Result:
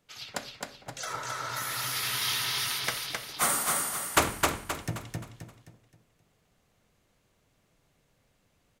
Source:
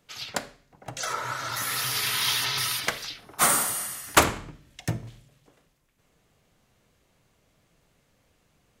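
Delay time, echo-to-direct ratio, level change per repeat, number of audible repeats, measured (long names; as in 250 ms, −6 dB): 263 ms, −2.5 dB, −8.0 dB, 4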